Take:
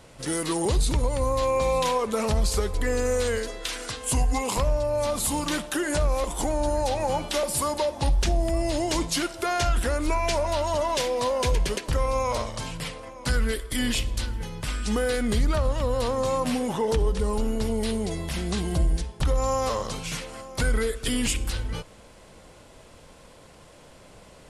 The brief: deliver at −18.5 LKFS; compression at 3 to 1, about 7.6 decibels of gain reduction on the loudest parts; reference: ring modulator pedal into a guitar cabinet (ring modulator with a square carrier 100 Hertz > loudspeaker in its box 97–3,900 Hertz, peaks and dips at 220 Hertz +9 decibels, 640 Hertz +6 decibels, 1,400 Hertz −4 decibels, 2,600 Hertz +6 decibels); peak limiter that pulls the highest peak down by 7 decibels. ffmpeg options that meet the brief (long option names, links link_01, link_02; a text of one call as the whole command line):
ffmpeg -i in.wav -af "acompressor=threshold=-29dB:ratio=3,alimiter=limit=-23.5dB:level=0:latency=1,aeval=exprs='val(0)*sgn(sin(2*PI*100*n/s))':channel_layout=same,highpass=97,equalizer=frequency=220:width_type=q:width=4:gain=9,equalizer=frequency=640:width_type=q:width=4:gain=6,equalizer=frequency=1400:width_type=q:width=4:gain=-4,equalizer=frequency=2600:width_type=q:width=4:gain=6,lowpass=frequency=3900:width=0.5412,lowpass=frequency=3900:width=1.3066,volume=12.5dB" out.wav